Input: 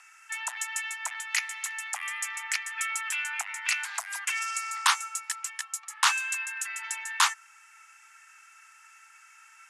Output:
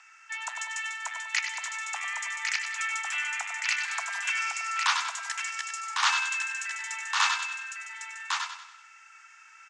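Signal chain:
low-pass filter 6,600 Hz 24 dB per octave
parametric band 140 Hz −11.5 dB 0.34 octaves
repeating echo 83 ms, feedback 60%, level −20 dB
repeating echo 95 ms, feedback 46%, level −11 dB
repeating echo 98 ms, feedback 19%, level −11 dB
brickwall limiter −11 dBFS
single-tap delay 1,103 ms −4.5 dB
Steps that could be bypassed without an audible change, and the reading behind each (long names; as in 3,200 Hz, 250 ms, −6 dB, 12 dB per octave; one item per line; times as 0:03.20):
parametric band 140 Hz: nothing at its input below 640 Hz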